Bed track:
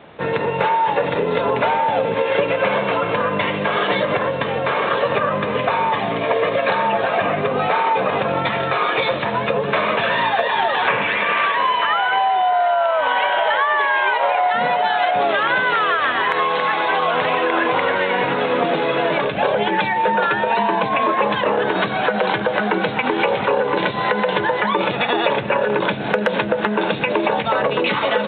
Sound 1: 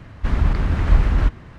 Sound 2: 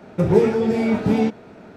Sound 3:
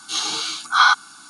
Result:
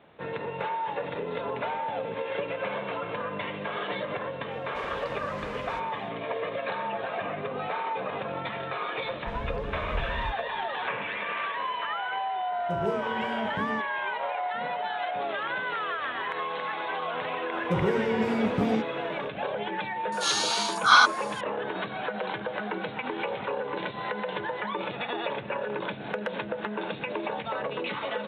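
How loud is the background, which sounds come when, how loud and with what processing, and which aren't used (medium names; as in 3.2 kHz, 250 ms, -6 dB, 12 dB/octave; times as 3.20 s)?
bed track -13.5 dB
4.51 s: add 1 -8.5 dB + high-pass 1.1 kHz 6 dB/octave
9.03 s: add 1 -18 dB
12.51 s: add 2 -15.5 dB
17.52 s: add 2 -7.5 dB + peak limiter -9.5 dBFS
20.12 s: add 3 -3 dB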